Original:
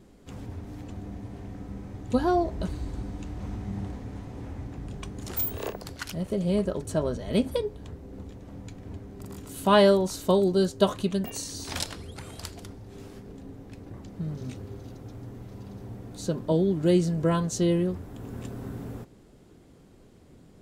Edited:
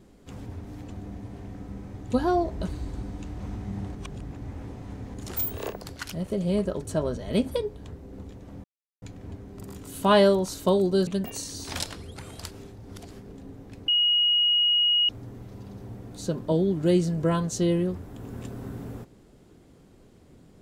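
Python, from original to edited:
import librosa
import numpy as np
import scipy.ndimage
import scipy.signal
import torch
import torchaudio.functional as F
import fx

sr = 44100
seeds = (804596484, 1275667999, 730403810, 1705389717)

y = fx.edit(x, sr, fx.reverse_span(start_s=3.95, length_s=1.19),
    fx.insert_silence(at_s=8.64, length_s=0.38),
    fx.cut(start_s=10.69, length_s=0.38),
    fx.reverse_span(start_s=12.51, length_s=0.6),
    fx.bleep(start_s=13.88, length_s=1.21, hz=2890.0, db=-18.5), tone=tone)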